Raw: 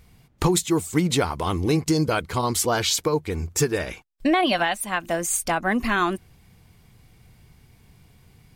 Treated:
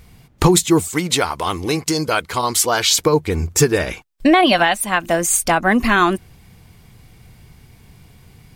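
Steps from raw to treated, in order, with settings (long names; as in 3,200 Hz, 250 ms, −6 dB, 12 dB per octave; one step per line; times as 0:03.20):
0:00.88–0:02.91: low-shelf EQ 410 Hz −11.5 dB
level +7.5 dB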